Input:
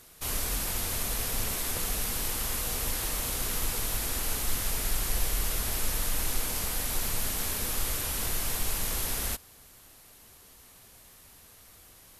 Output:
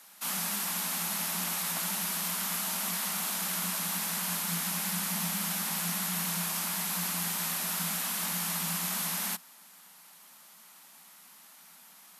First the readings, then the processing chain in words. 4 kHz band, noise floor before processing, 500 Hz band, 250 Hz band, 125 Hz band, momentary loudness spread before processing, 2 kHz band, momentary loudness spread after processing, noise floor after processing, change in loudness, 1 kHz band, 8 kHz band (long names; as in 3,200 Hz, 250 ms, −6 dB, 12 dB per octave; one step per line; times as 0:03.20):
0.0 dB, −55 dBFS, −6.5 dB, +3.0 dB, −3.5 dB, 0 LU, +1.0 dB, 0 LU, −55 dBFS, 0.0 dB, +2.0 dB, 0.0 dB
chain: frequency shifter +160 Hz
low shelf with overshoot 630 Hz −10.5 dB, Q 1.5